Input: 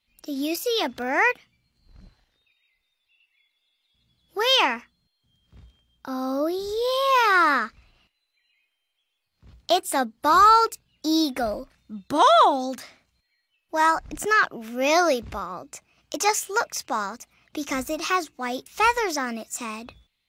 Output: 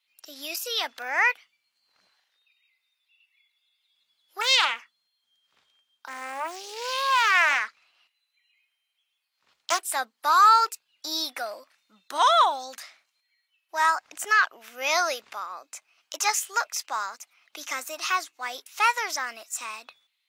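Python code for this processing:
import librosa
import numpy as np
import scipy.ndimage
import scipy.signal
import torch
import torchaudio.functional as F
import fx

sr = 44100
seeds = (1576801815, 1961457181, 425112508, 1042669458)

y = fx.doppler_dist(x, sr, depth_ms=0.59, at=(4.41, 9.8))
y = scipy.signal.sosfilt(scipy.signal.butter(2, 980.0, 'highpass', fs=sr, output='sos'), y)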